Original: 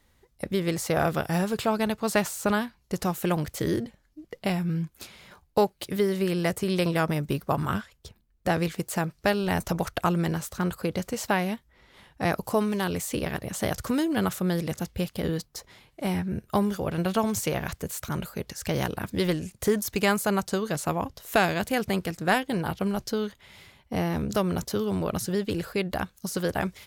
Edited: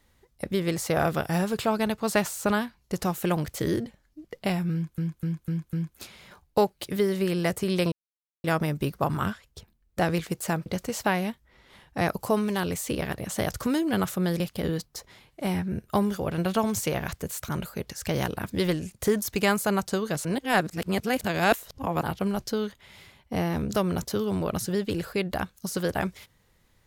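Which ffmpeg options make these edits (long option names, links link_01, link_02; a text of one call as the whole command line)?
ffmpeg -i in.wav -filter_complex "[0:a]asplit=10[link_01][link_02][link_03][link_04][link_05][link_06][link_07][link_08][link_09][link_10];[link_01]atrim=end=4.982[link_11];[link_02]atrim=start=4.728:end=4.982[link_12];[link_03]atrim=start=4.728:end=4.982[link_13];[link_04]atrim=start=4.728:end=4.982[link_14];[link_05]atrim=start=4.728:end=6.92,asetpts=PTS-STARTPTS,afade=type=out:start_time=2.188:duration=0.004:curve=hsin,apad=pad_dur=0.52[link_15];[link_06]atrim=start=6.92:end=9.142,asetpts=PTS-STARTPTS,afade=type=in:duration=0.004:curve=hsin[link_16];[link_07]atrim=start=10.898:end=14.642[link_17];[link_08]atrim=start=14.998:end=20.852[link_18];[link_09]atrim=start=20.848:end=22.632,asetpts=PTS-STARTPTS,areverse[link_19];[link_10]atrim=start=22.628[link_20];[link_11][link_12]acrossfade=duration=0.004:curve1=hsin:curve2=hsin[link_21];[link_21][link_13]acrossfade=duration=0.004:curve1=hsin:curve2=hsin[link_22];[link_22][link_14]acrossfade=duration=0.004:curve1=hsin:curve2=hsin[link_23];[link_15][link_16]concat=n=2:v=0:a=1[link_24];[link_23][link_24]acrossfade=duration=0.004:curve1=hsin:curve2=hsin[link_25];[link_25][link_17]acrossfade=duration=0.004:curve1=hsin:curve2=hsin[link_26];[link_26][link_18]acrossfade=duration=0.004:curve1=hsin:curve2=hsin[link_27];[link_27][link_19]acrossfade=duration=0.004:curve1=hsin:curve2=hsin[link_28];[link_28][link_20]acrossfade=duration=0.004:curve1=hsin:curve2=hsin" out.wav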